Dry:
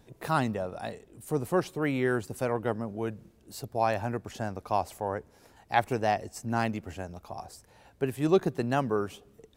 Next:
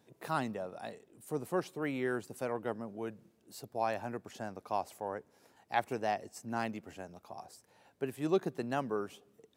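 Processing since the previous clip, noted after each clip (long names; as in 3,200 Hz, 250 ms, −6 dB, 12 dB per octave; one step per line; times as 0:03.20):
high-pass filter 160 Hz 12 dB per octave
level −6.5 dB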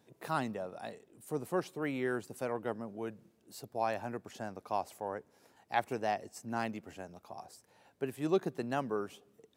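no processing that can be heard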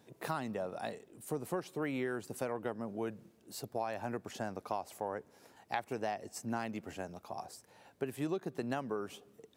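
downward compressor 12 to 1, threshold −36 dBFS, peak gain reduction 13.5 dB
level +4 dB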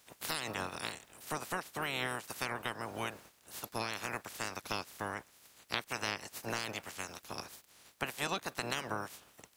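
ceiling on every frequency bin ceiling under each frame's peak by 30 dB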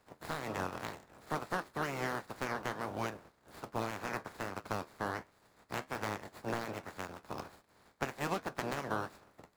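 running median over 15 samples
flanger 1.3 Hz, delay 9 ms, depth 5.8 ms, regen −60%
level +7 dB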